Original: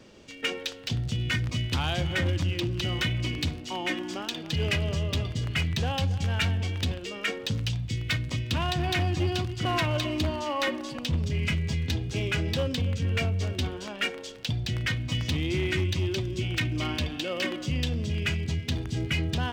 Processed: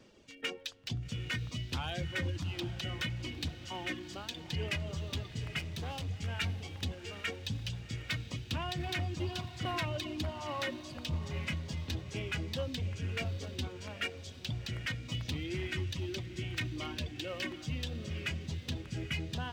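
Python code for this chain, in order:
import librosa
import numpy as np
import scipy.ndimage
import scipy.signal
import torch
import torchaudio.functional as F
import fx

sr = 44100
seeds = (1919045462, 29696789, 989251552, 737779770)

p1 = fx.dereverb_blind(x, sr, rt60_s=0.94)
p2 = fx.overload_stage(p1, sr, gain_db=29.5, at=(5.59, 6.08))
p3 = p2 + fx.echo_diffused(p2, sr, ms=789, feedback_pct=45, wet_db=-12.0, dry=0)
y = p3 * 10.0 ** (-7.5 / 20.0)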